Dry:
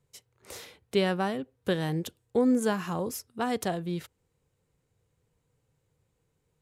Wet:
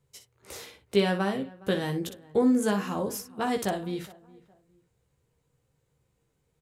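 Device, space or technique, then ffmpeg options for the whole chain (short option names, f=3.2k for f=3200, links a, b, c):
slapback doubling: -filter_complex "[0:a]asplit=3[a][b][c];[b]adelay=15,volume=-5.5dB[d];[c]adelay=60,volume=-9dB[e];[a][d][e]amix=inputs=3:normalize=0,asplit=2[f][g];[g]adelay=414,lowpass=f=1.7k:p=1,volume=-21.5dB,asplit=2[h][i];[i]adelay=414,lowpass=f=1.7k:p=1,volume=0.31[j];[f][h][j]amix=inputs=3:normalize=0"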